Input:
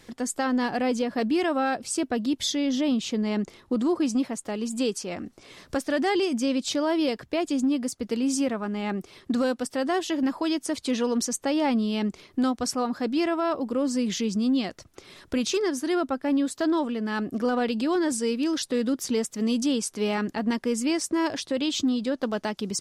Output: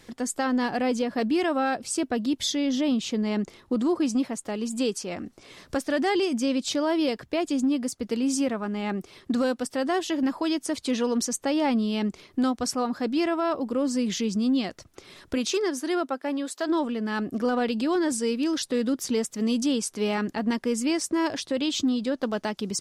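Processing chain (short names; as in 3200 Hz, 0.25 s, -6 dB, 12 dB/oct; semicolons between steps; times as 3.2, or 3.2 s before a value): 15.35–16.68 HPF 190 Hz -> 460 Hz 12 dB/oct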